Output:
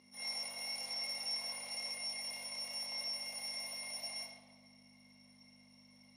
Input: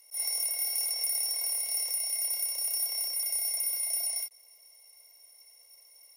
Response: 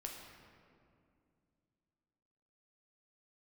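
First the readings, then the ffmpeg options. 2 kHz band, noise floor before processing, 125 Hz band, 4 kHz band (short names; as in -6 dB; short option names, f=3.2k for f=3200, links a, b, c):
+1.0 dB, -58 dBFS, n/a, -4.0 dB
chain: -filter_complex "[0:a]aeval=exprs='val(0)+0.00708*(sin(2*PI*50*n/s)+sin(2*PI*2*50*n/s)/2+sin(2*PI*3*50*n/s)/3+sin(2*PI*4*50*n/s)/4+sin(2*PI*5*50*n/s)/5)':c=same,highpass=570,lowpass=4k[a];[1:a]atrim=start_sample=2205,asetrate=79380,aresample=44100[b];[a][b]afir=irnorm=-1:irlink=0,volume=9dB"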